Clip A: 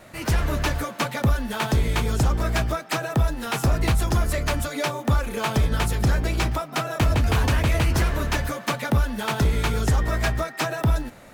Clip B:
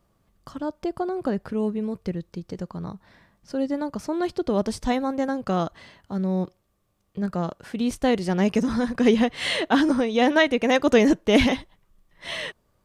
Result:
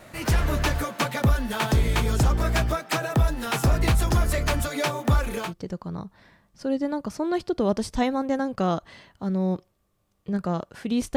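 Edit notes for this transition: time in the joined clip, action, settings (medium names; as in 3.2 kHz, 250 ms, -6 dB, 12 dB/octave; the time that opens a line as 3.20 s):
clip A
5.44 s: go over to clip B from 2.33 s, crossfade 0.20 s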